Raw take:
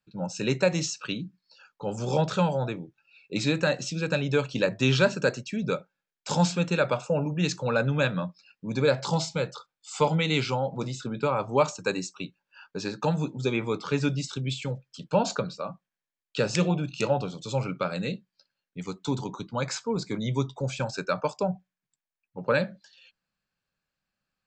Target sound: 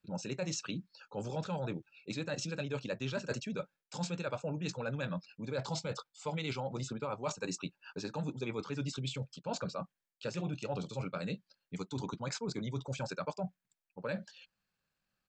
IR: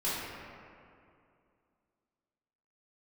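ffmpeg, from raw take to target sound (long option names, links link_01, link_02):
-af "areverse,acompressor=threshold=-35dB:ratio=5,areverse,atempo=1.6"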